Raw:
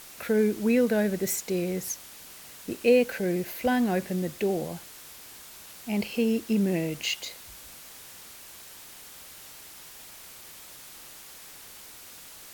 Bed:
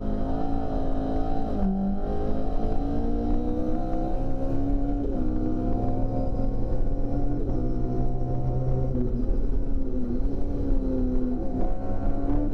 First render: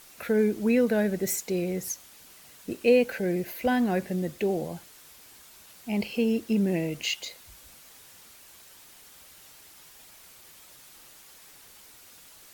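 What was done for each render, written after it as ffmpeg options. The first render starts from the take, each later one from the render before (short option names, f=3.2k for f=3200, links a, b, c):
-af "afftdn=nr=6:nf=-47"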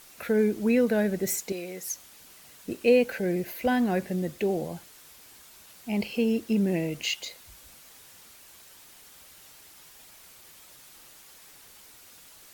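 -filter_complex "[0:a]asettb=1/sr,asplit=3[a][b][c];[a]atrim=end=1.524[d];[b]atrim=start=1.52:end=1.93,asetpts=PTS-STARTPTS,afade=t=in:d=0.004:c=qsin,afade=t=out:st=0.406:d=0.004:c=qsin,highpass=f=810:p=1[e];[c]atrim=start=1.926[f];[d][e]acrossfade=d=0.004:c1=hsin:c2=qsin[g];[g][f]acrossfade=d=0.004:c1=qsin:c2=hsin"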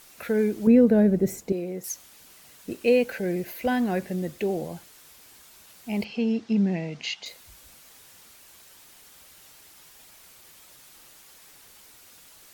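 -filter_complex "[0:a]asettb=1/sr,asplit=3[a][b][c];[a]atrim=end=0.674[d];[b]atrim=start=0.67:end=1.84,asetpts=PTS-STARTPTS,afade=t=in:d=0.004:c=qsin,afade=t=out:st=1.166:d=0.004:c=qsin,tiltshelf=f=800:g=9.5[e];[c]atrim=start=1.836[f];[d][e]acrossfade=d=0.004:c1=hsin:c2=qsin[g];[g][f]acrossfade=d=0.004:c1=qsin:c2=hsin,asettb=1/sr,asplit=3[h][i][j];[h]atrim=end=6.044[k];[i]atrim=start=6.04:end=7.26,asetpts=PTS-STARTPTS,afade=t=in:d=0.004:c=qsin,afade=t=out:st=1.216:d=0.004:c=qsin,highpass=110,equalizer=f=200:t=q:w=4:g=4,equalizer=f=330:t=q:w=4:g=-7,equalizer=f=530:t=q:w=4:g=-6,equalizer=f=780:t=q:w=4:g=4,equalizer=f=2.8k:t=q:w=4:g=-3,lowpass=f=5.7k:w=0.5412,lowpass=f=5.7k:w=1.3066[l];[j]atrim=start=7.256[m];[k][l]acrossfade=d=0.004:c1=hsin:c2=qsin[n];[n][m]acrossfade=d=0.004:c1=qsin:c2=hsin"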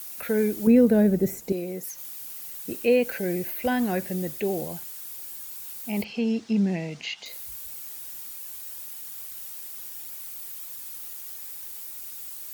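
-filter_complex "[0:a]acrossover=split=3100[a][b];[b]acompressor=threshold=-47dB:ratio=4:attack=1:release=60[c];[a][c]amix=inputs=2:normalize=0,aemphasis=mode=production:type=50fm"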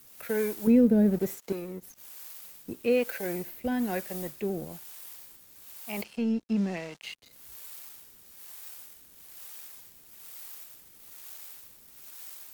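-filter_complex "[0:a]aeval=exprs='sgn(val(0))*max(abs(val(0))-0.00891,0)':c=same,acrossover=split=400[a][b];[a]aeval=exprs='val(0)*(1-0.7/2+0.7/2*cos(2*PI*1.1*n/s))':c=same[c];[b]aeval=exprs='val(0)*(1-0.7/2-0.7/2*cos(2*PI*1.1*n/s))':c=same[d];[c][d]amix=inputs=2:normalize=0"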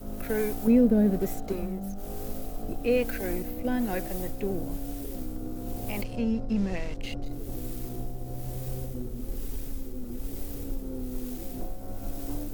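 -filter_complex "[1:a]volume=-9.5dB[a];[0:a][a]amix=inputs=2:normalize=0"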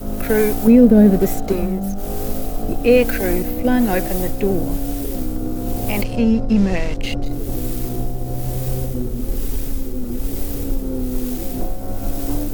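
-af "volume=12dB,alimiter=limit=-2dB:level=0:latency=1"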